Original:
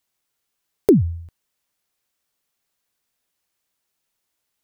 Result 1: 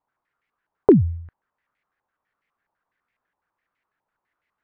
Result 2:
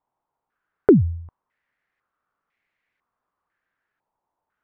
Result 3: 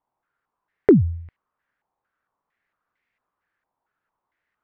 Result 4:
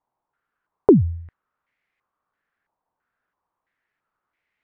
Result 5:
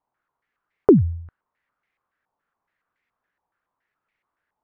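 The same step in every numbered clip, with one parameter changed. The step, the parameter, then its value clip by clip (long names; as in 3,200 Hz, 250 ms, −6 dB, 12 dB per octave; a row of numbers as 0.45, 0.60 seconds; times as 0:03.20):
low-pass on a step sequencer, speed: 12, 2, 4.4, 3, 7.1 Hertz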